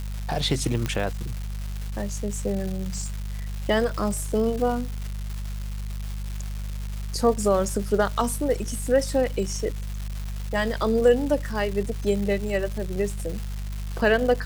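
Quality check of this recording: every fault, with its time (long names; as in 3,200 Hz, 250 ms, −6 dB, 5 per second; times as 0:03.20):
surface crackle 470 per second −31 dBFS
mains hum 50 Hz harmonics 4 −31 dBFS
0:00.86: click −12 dBFS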